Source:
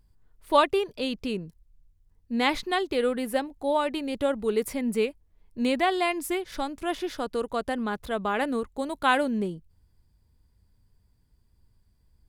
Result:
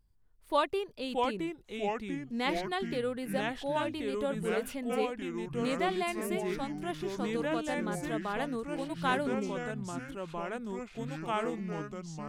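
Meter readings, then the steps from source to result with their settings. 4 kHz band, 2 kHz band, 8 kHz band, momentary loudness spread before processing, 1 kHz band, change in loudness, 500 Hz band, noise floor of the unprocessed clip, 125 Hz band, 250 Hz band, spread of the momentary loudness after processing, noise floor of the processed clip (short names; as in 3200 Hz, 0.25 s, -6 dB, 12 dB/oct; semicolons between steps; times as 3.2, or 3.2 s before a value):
-6.5 dB, -5.5 dB, -4.5 dB, 9 LU, -6.0 dB, -6.5 dB, -5.0 dB, -66 dBFS, +4.0 dB, -4.0 dB, 8 LU, -58 dBFS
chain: echoes that change speed 0.528 s, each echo -3 st, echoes 3; gain -8 dB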